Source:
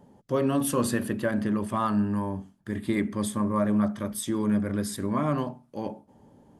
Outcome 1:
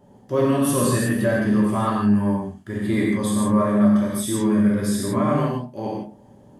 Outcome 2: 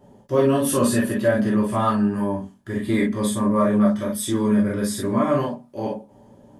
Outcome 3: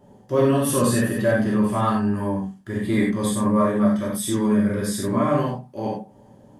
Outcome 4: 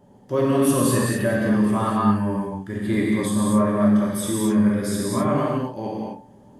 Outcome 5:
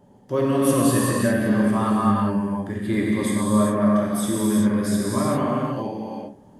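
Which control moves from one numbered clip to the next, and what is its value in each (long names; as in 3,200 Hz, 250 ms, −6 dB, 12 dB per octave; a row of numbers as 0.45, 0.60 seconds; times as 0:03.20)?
reverb whose tail is shaped and stops, gate: 190, 80, 120, 290, 430 milliseconds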